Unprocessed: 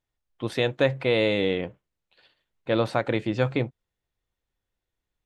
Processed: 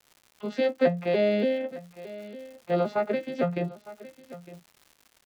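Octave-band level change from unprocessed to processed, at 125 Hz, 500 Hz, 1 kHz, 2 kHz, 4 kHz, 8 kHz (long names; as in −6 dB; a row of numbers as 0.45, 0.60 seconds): −6.0 dB, −0.5 dB, 0.0 dB, −6.5 dB, −9.5 dB, can't be measured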